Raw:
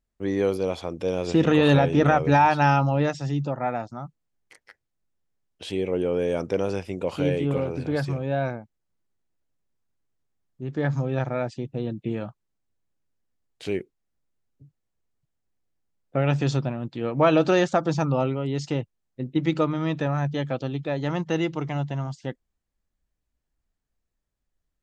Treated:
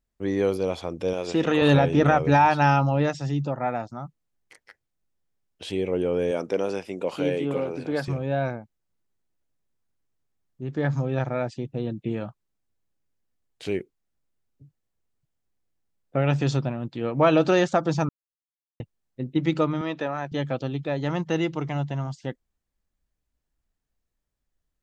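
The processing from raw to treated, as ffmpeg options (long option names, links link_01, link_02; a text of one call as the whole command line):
ffmpeg -i in.wav -filter_complex "[0:a]asettb=1/sr,asplit=3[link_01][link_02][link_03];[link_01]atrim=end=1.134[link_04];[link_02]atrim=start=1.13:end=1.62,asetpts=PTS-STARTPTS,afade=type=in:duration=0.004:curve=qsin,afade=type=out:start_time=0.486:duration=0.004:curve=qsin,lowshelf=frequency=200:gain=-12[link_05];[link_03]atrim=start=1.616[link_06];[link_04][link_05]acrossfade=duration=0.004:curve1=hsin:curve2=qsin[link_07];[link_07][link_06]acrossfade=duration=0.004:curve1=qsin:curve2=hsin,asettb=1/sr,asplit=3[link_08][link_09][link_10];[link_08]atrim=end=6.314[link_11];[link_09]atrim=start=6.31:end=8.08,asetpts=PTS-STARTPTS,afade=type=in:duration=0.004:curve=qsin,afade=type=out:start_time=1.766:duration=0.004:curve=qsin,highpass=210[link_12];[link_10]atrim=start=8.076[link_13];[link_11][link_12]acrossfade=duration=0.004:curve1=hsin:curve2=qsin[link_14];[link_14][link_13]acrossfade=duration=0.004:curve1=qsin:curve2=hsin,asettb=1/sr,asplit=3[link_15][link_16][link_17];[link_15]atrim=end=19.814[link_18];[link_16]atrim=start=19.81:end=20.32,asetpts=PTS-STARTPTS,afade=type=in:duration=0.004:curve=qsin,afade=type=out:start_time=0.506:duration=0.004:curve=qsin,highpass=310,lowpass=5900[link_19];[link_17]atrim=start=20.316[link_20];[link_18][link_19]acrossfade=duration=0.004:curve1=hsin:curve2=qsin[link_21];[link_21][link_20]acrossfade=duration=0.004:curve1=qsin:curve2=hsin,asplit=3[link_22][link_23][link_24];[link_22]atrim=end=18.09,asetpts=PTS-STARTPTS,afade=type=out:start_time=18.086:duration=0.004:curve=hsin[link_25];[link_23]atrim=start=18.09:end=18.8,asetpts=PTS-STARTPTS,volume=0[link_26];[link_24]atrim=start=18.8,asetpts=PTS-STARTPTS,afade=type=in:duration=0.004:curve=hsin[link_27];[link_25][link_26][link_27]concat=n=3:v=0:a=1" out.wav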